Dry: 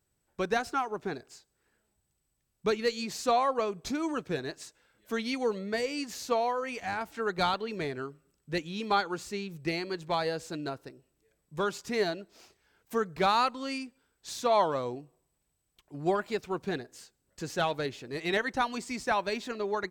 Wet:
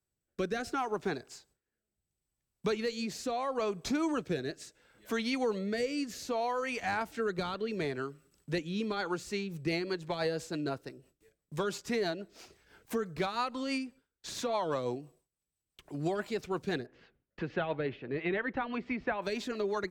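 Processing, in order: gate with hold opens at -59 dBFS; 16.86–19.22 LPF 2700 Hz 24 dB/oct; limiter -23 dBFS, peak gain reduction 9.5 dB; rotary speaker horn 0.7 Hz, later 6 Hz, at 8.69; three-band squash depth 40%; gain +2 dB

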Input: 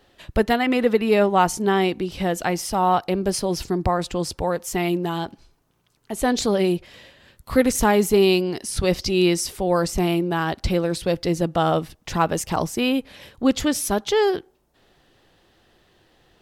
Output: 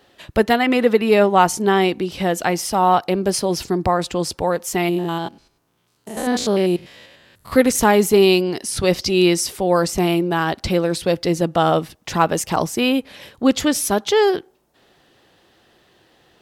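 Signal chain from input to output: 4.89–7.52 stepped spectrum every 0.1 s; HPF 140 Hz 6 dB/oct; gain +4 dB

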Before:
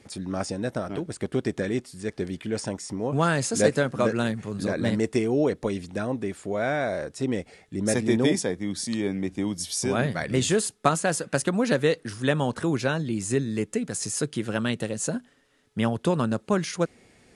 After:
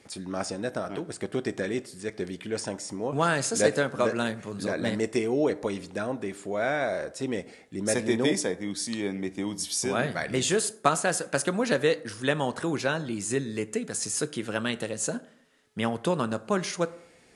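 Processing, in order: low shelf 230 Hz -9 dB; plate-style reverb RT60 0.65 s, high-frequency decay 0.5×, DRR 13.5 dB

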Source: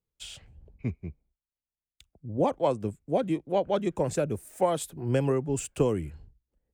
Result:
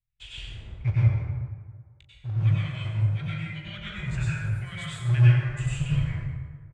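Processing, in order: reverb removal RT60 1.3 s; notches 50/100 Hz; reverb removal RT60 1.9 s; elliptic band-stop 120–1800 Hz, stop band 40 dB; bell 5300 Hz -9 dB 0.45 oct; in parallel at -5 dB: companded quantiser 4-bit; on the sum: tape spacing loss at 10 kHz 30 dB; early reflections 19 ms -11 dB, 39 ms -12 dB; plate-style reverb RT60 1.6 s, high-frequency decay 0.55×, pre-delay 80 ms, DRR -8 dB; gain +6 dB

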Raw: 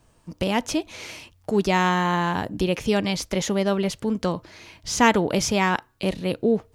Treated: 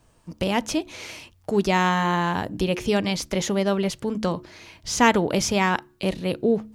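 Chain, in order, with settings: de-hum 72.03 Hz, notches 5

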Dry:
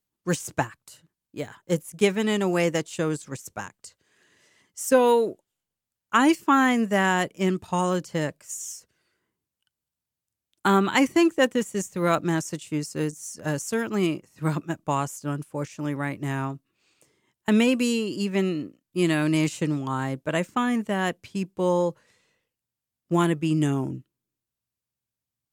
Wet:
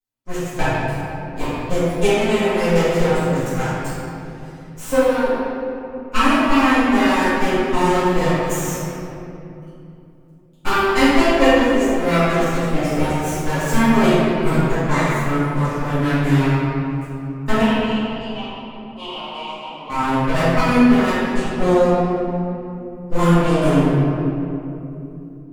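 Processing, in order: minimum comb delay 7.7 ms; transient shaper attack +5 dB, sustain -7 dB; AGC gain up to 11 dB; 17.61–19.9 double band-pass 1700 Hz, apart 1.6 oct; shoebox room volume 120 m³, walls hard, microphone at 2 m; gain -13 dB

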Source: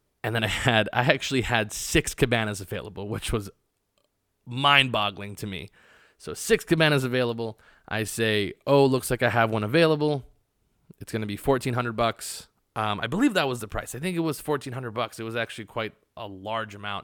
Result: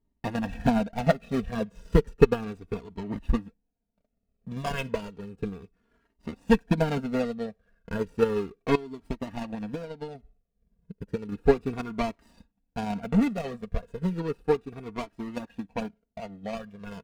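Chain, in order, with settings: median filter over 41 samples; high shelf 8700 Hz -7.5 dB; comb 4.3 ms, depth 60%; 8.75–11.32 compressor 20:1, threshold -29 dBFS, peak gain reduction 15 dB; transient shaper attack +8 dB, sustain -4 dB; small resonant body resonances 200/2600 Hz, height 6 dB; cascading flanger falling 0.33 Hz

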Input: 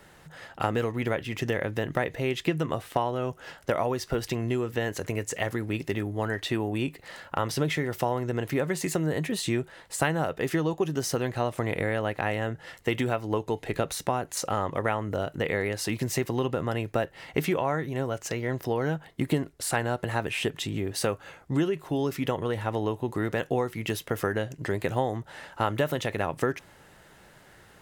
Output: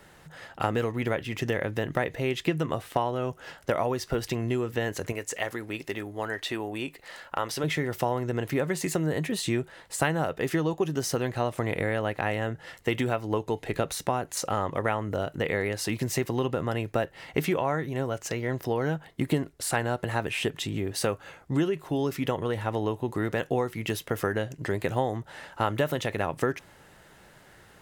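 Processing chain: 5.12–7.64 bell 120 Hz -10.5 dB 2.5 oct

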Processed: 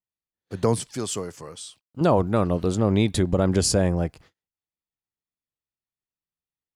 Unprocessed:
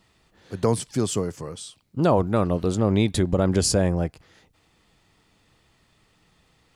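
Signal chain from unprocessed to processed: gate -49 dBFS, range -39 dB; 0.87–2.01 low shelf 450 Hz -9 dB

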